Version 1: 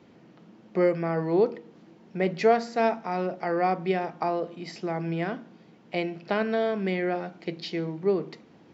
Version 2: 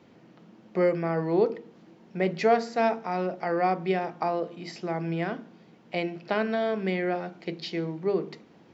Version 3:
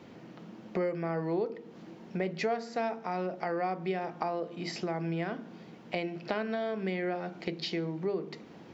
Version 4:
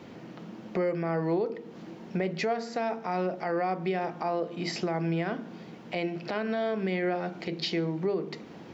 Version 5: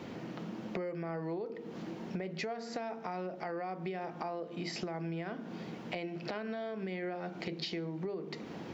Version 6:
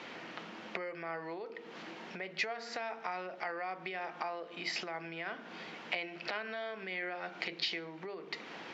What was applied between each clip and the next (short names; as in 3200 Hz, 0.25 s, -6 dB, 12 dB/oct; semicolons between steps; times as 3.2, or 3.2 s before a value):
notches 50/100/150/200/250/300/350/400/450 Hz
compressor 3:1, threshold -38 dBFS, peak gain reduction 16 dB; gain +5 dB
limiter -24.5 dBFS, peak gain reduction 9 dB; gain +4.5 dB
compressor 6:1, threshold -38 dBFS, peak gain reduction 13 dB; gain +2 dB
band-pass 2300 Hz, Q 0.78; gain +7.5 dB